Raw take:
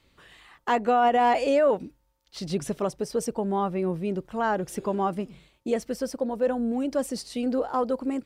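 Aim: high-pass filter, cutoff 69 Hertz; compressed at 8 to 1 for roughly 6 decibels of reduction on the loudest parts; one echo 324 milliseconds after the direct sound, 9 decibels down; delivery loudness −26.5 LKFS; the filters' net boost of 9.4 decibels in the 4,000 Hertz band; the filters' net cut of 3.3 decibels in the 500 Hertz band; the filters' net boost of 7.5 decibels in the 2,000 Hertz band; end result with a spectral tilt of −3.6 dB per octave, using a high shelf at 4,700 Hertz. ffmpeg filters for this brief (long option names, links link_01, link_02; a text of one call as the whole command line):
ffmpeg -i in.wav -af "highpass=69,equalizer=frequency=500:width_type=o:gain=-4.5,equalizer=frequency=2000:width_type=o:gain=7.5,equalizer=frequency=4000:width_type=o:gain=6.5,highshelf=frequency=4700:gain=7,acompressor=threshold=-23dB:ratio=8,aecho=1:1:324:0.355,volume=2.5dB" out.wav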